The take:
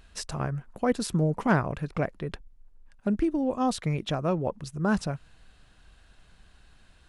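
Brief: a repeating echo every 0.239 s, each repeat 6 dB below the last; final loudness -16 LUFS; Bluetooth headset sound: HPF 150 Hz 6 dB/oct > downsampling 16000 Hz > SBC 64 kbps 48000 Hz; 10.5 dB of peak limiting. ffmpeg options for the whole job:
-af "alimiter=limit=-21.5dB:level=0:latency=1,highpass=f=150:p=1,aecho=1:1:239|478|717|956|1195|1434:0.501|0.251|0.125|0.0626|0.0313|0.0157,aresample=16000,aresample=44100,volume=16.5dB" -ar 48000 -c:a sbc -b:a 64k

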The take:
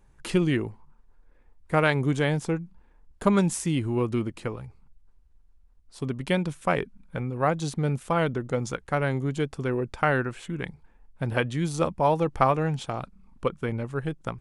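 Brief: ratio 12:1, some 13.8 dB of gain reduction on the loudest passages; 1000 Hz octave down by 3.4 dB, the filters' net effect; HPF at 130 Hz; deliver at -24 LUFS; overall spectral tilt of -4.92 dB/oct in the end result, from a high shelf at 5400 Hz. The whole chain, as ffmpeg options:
-af "highpass=130,equalizer=f=1k:t=o:g=-5,highshelf=f=5.4k:g=8,acompressor=threshold=-32dB:ratio=12,volume=14dB"

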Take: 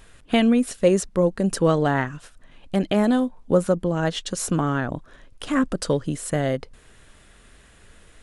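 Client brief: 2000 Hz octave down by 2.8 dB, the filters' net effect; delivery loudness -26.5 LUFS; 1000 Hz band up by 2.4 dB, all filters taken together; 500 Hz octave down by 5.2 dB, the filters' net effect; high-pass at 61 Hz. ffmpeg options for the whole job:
-af "highpass=61,equalizer=f=500:t=o:g=-8,equalizer=f=1k:t=o:g=7.5,equalizer=f=2k:t=o:g=-6,volume=-2dB"

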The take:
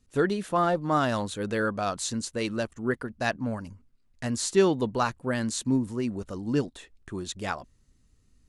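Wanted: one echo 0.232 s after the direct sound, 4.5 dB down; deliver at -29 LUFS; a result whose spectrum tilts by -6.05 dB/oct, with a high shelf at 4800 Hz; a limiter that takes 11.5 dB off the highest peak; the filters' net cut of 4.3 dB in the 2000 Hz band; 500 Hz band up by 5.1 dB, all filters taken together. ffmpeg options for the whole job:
-af "equalizer=f=500:t=o:g=7,equalizer=f=2k:t=o:g=-5.5,highshelf=f=4.8k:g=-7.5,alimiter=limit=-18.5dB:level=0:latency=1,aecho=1:1:232:0.596,volume=-0.5dB"

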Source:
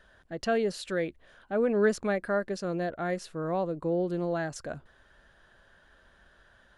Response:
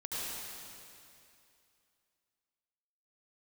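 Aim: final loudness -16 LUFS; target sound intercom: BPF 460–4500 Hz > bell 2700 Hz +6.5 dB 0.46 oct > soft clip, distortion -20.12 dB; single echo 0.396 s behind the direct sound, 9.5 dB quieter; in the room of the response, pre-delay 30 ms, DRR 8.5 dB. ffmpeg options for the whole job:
-filter_complex "[0:a]aecho=1:1:396:0.335,asplit=2[a][b];[1:a]atrim=start_sample=2205,adelay=30[c];[b][c]afir=irnorm=-1:irlink=0,volume=-12dB[d];[a][d]amix=inputs=2:normalize=0,highpass=460,lowpass=4.5k,equalizer=f=2.7k:t=o:w=0.46:g=6.5,asoftclip=threshold=-20.5dB,volume=17.5dB"

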